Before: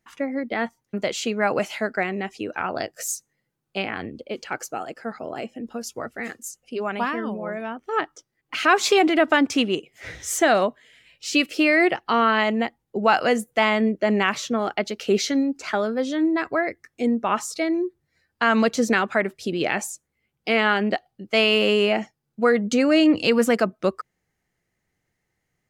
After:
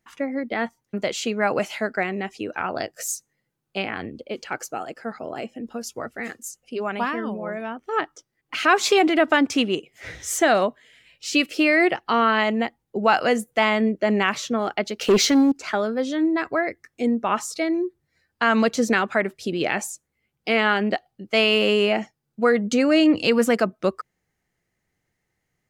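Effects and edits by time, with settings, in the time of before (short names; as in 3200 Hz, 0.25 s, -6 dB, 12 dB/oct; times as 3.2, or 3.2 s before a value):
15.01–15.52 sample leveller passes 2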